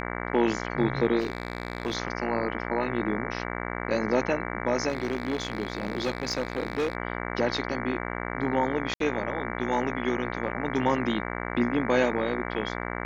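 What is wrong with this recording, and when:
mains buzz 60 Hz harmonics 38 −33 dBFS
0:01.19–0:01.95: clipping −23 dBFS
0:04.88–0:06.95: clipping −22.5 dBFS
0:08.94–0:09.00: drop-out 63 ms

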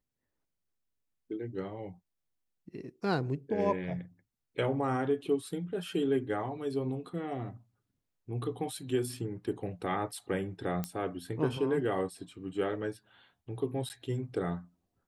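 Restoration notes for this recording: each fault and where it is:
0:10.84: click −19 dBFS
0:13.89–0:13.90: drop-out 9.7 ms

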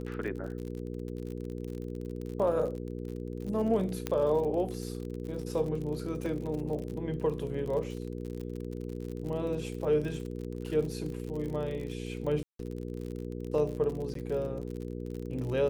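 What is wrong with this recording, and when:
surface crackle 52 per second −37 dBFS
mains hum 60 Hz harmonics 8 −38 dBFS
0:04.07: click −16 dBFS
0:06.26: drop-out 2.5 ms
0:12.43–0:12.59: drop-out 163 ms
0:14.14–0:14.15: drop-out

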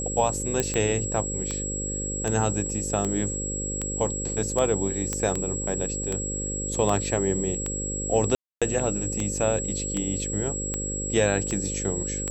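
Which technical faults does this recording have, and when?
mains buzz 50 Hz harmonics 11 −33 dBFS
scratch tick 78 rpm −14 dBFS
whistle 7,700 Hz −30 dBFS
0:00.60: click −9 dBFS
0:05.13: click −12 dBFS
0:08.35–0:08.62: drop-out 266 ms

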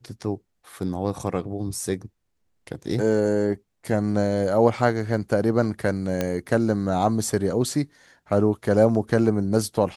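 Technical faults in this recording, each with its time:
0:06.21: click −10 dBFS

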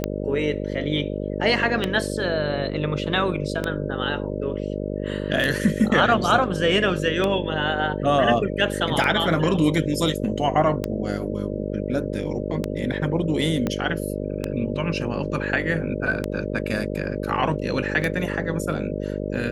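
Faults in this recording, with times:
mains buzz 50 Hz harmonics 12 −28 dBFS
scratch tick 33 1/3 rpm −10 dBFS
0:13.67: click −11 dBFS

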